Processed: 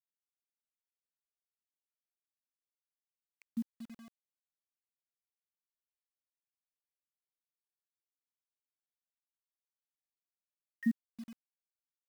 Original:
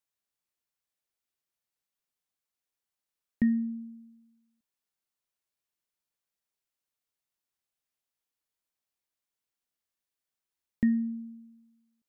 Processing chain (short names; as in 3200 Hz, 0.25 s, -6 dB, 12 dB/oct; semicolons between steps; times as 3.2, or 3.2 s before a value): random spectral dropouts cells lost 84%; bit-crush 9-bit; gain -2.5 dB